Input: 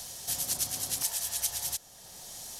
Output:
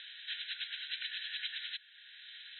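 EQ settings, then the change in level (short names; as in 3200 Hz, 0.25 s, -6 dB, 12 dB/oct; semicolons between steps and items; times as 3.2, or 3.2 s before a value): brick-wall FIR band-pass 1400–4100 Hz; air absorption 120 m; +7.5 dB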